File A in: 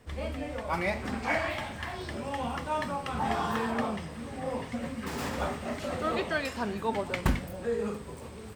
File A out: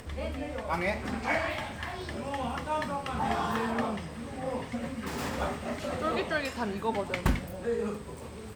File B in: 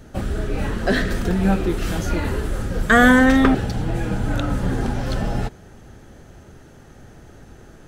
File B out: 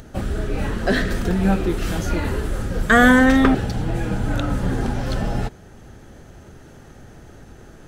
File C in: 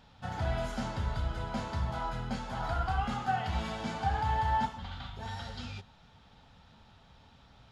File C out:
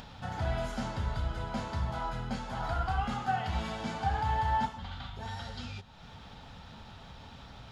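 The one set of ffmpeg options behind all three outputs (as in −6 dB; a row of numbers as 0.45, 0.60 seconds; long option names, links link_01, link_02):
-af "acompressor=mode=upward:threshold=-38dB:ratio=2.5"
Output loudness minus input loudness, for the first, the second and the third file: 0.0, 0.0, 0.0 LU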